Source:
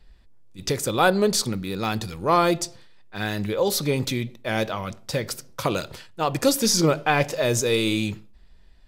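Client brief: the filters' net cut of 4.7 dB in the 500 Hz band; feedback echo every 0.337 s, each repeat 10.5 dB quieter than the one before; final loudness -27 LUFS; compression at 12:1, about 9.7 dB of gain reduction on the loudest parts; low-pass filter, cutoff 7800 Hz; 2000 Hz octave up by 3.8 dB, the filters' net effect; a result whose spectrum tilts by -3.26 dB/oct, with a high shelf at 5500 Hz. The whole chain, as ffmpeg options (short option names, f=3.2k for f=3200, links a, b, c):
-af "lowpass=7.8k,equalizer=f=500:t=o:g=-6,equalizer=f=2k:t=o:g=4.5,highshelf=f=5.5k:g=8,acompressor=threshold=-24dB:ratio=12,aecho=1:1:337|674|1011:0.299|0.0896|0.0269,volume=2dB"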